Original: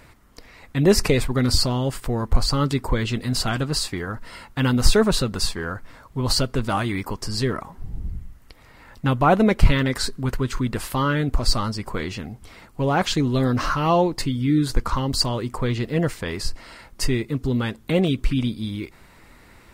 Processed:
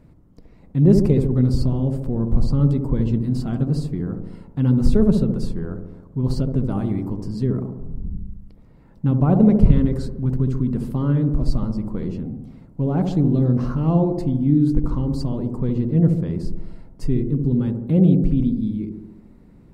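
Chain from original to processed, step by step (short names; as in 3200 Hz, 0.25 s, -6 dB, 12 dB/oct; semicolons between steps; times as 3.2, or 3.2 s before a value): EQ curve 110 Hz 0 dB, 160 Hz +8 dB, 1800 Hz -18 dB; on a send: dark delay 70 ms, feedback 63%, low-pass 780 Hz, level -4 dB; on the sum: gain -1 dB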